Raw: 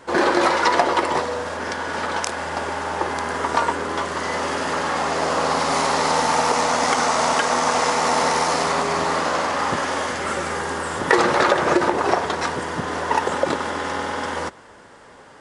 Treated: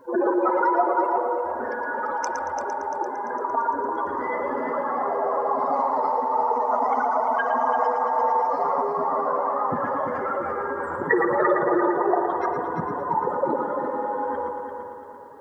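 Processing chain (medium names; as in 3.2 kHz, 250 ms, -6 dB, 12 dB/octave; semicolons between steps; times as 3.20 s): spectral contrast enhancement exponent 3.2; 2.64–3.50 s: Chebyshev band-pass 160–1900 Hz, order 3; word length cut 12-bit, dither triangular; multi-head delay 114 ms, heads first and third, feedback 56%, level -8 dB; on a send at -9 dB: reverberation RT60 3.1 s, pre-delay 52 ms; on the sum: trim -3.5 dB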